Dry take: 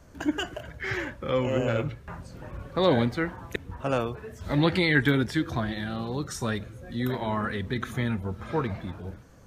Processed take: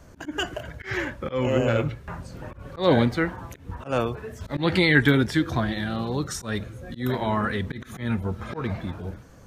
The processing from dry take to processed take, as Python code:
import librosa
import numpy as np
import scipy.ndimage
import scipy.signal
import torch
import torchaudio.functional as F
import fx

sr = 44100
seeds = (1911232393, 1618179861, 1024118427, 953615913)

y = fx.auto_swell(x, sr, attack_ms=147.0)
y = F.gain(torch.from_numpy(y), 4.0).numpy()